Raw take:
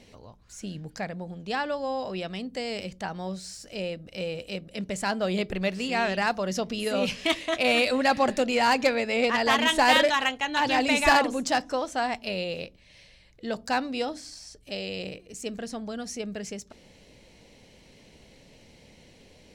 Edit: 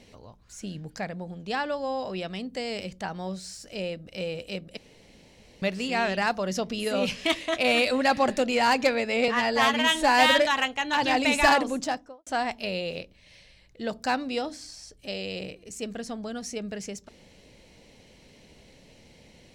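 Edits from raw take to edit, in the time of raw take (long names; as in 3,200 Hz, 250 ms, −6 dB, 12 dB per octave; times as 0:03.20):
0:04.77–0:05.62: fill with room tone
0:09.28–0:10.01: time-stretch 1.5×
0:11.33–0:11.90: fade out and dull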